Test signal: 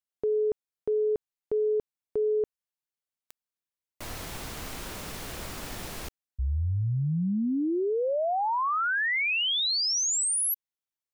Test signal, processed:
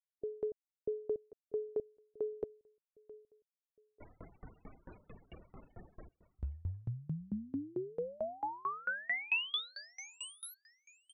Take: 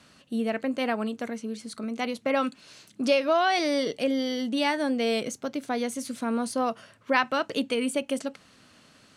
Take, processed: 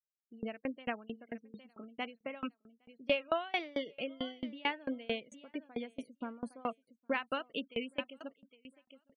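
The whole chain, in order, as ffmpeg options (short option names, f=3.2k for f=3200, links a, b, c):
-filter_complex "[0:a]afftfilt=real='re*gte(hypot(re,im),0.0224)':imag='im*gte(hypot(re,im),0.0224)':win_size=1024:overlap=0.75,highshelf=f=3.9k:t=q:w=3:g=-9,asplit=2[a][b];[b]aecho=0:1:811|1622:0.141|0.0268[c];[a][c]amix=inputs=2:normalize=0,aeval=exprs='val(0)*pow(10,-28*if(lt(mod(4.5*n/s,1),2*abs(4.5)/1000),1-mod(4.5*n/s,1)/(2*abs(4.5)/1000),(mod(4.5*n/s,1)-2*abs(4.5)/1000)/(1-2*abs(4.5)/1000))/20)':c=same,volume=-5.5dB"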